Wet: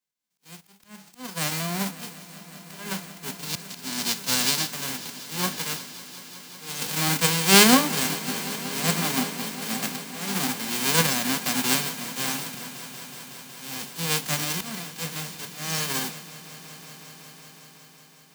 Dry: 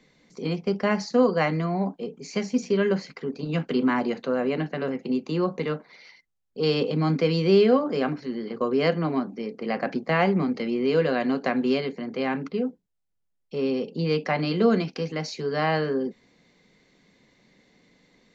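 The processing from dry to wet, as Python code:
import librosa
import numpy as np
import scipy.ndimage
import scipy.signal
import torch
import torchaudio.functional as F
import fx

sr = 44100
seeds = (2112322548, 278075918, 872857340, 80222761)

y = fx.envelope_flatten(x, sr, power=0.1)
y = fx.dynamic_eq(y, sr, hz=4800.0, q=1.2, threshold_db=-41.0, ratio=4.0, max_db=7, at=(3.44, 4.7))
y = fx.auto_swell(y, sr, attack_ms=347.0)
y = fx.echo_swell(y, sr, ms=185, loudest=5, wet_db=-15.0)
y = fx.band_widen(y, sr, depth_pct=70)
y = y * librosa.db_to_amplitude(-2.5)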